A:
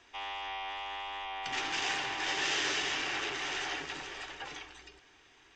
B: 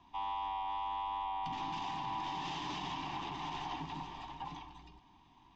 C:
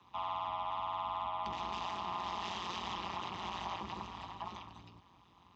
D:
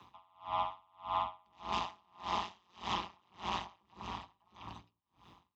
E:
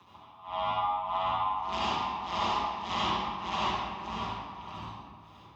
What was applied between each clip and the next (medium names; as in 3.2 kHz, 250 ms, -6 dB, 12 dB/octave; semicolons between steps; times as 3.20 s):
FFT filter 120 Hz 0 dB, 170 Hz +8 dB, 290 Hz -1 dB, 470 Hz -22 dB, 990 Hz +5 dB, 1.4 kHz -23 dB, 3.6 kHz -12 dB, 9.4 kHz -27 dB; peak limiter -36 dBFS, peak gain reduction 6.5 dB; trim +5 dB
peaking EQ 330 Hz -7.5 dB 1.2 oct; AM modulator 180 Hz, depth 100%; frequency shift +48 Hz; trim +5 dB
logarithmic tremolo 1.7 Hz, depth 38 dB; trim +6.5 dB
reverberation RT60 1.8 s, pre-delay 61 ms, DRR -8.5 dB